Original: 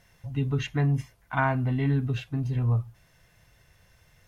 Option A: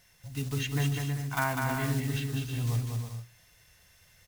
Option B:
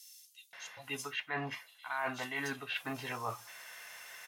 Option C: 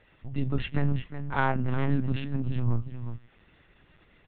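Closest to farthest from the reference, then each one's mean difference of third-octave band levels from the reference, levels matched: C, A, B; 4.5 dB, 11.0 dB, 18.0 dB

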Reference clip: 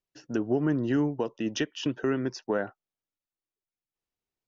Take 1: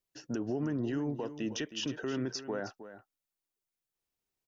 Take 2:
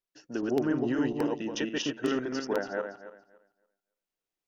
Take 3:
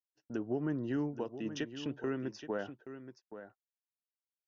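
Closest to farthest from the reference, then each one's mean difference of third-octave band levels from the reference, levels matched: 3, 1, 2; 3.0 dB, 4.5 dB, 7.0 dB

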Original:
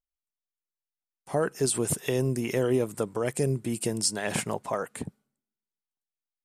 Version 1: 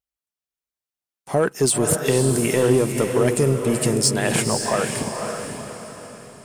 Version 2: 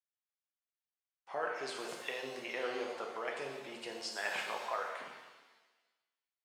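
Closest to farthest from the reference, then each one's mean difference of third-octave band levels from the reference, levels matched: 1, 2; 6.0 dB, 12.0 dB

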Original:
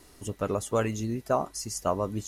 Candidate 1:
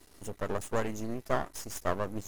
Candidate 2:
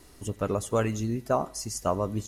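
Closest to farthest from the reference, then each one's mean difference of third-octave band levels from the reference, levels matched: 2, 1; 1.5 dB, 4.5 dB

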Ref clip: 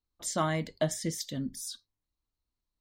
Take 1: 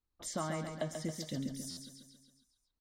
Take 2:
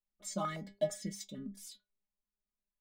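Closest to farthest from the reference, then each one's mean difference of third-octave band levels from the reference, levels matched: 2, 1; 5.5 dB, 9.5 dB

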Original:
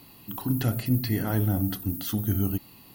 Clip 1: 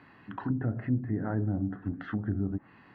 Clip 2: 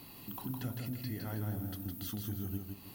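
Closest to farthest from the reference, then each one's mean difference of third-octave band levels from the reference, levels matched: 2, 1; 6.0 dB, 10.0 dB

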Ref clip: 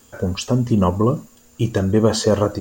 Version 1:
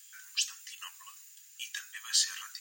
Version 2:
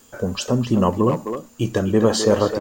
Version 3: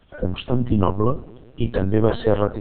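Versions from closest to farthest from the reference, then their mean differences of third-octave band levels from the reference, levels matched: 2, 3, 1; 3.0 dB, 7.0 dB, 22.5 dB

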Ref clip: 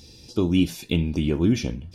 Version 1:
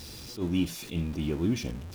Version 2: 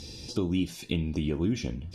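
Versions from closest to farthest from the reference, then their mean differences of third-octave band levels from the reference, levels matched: 2, 1; 3.5 dB, 7.5 dB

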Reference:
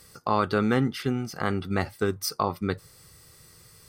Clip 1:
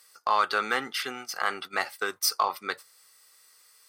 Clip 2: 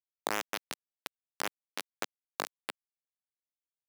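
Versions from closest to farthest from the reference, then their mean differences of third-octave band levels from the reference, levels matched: 1, 2; 8.5 dB, 19.5 dB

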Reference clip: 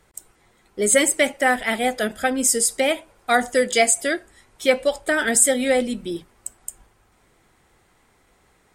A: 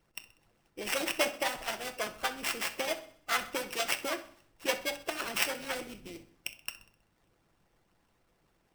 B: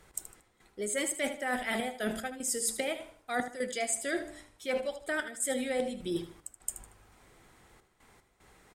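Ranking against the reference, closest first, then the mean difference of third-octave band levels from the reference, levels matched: B, A; 5.5 dB, 10.5 dB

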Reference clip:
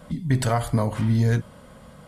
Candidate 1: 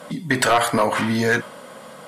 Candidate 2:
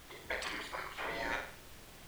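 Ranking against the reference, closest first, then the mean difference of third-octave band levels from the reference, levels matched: 1, 2; 7.5 dB, 15.0 dB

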